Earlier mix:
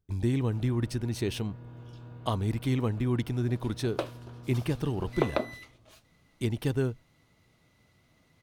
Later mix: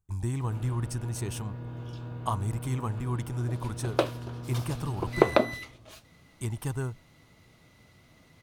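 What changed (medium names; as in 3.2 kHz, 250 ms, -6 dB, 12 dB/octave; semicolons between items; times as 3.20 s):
speech: add graphic EQ 250/500/1000/2000/4000/8000 Hz -7/-9/+8/-5/-10/+9 dB; background +7.0 dB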